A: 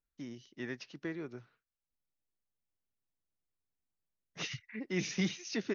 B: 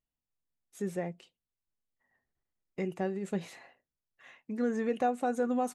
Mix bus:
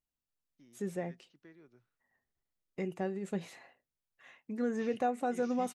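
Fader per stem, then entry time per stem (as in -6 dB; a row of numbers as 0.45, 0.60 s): -17.5, -2.5 dB; 0.40, 0.00 s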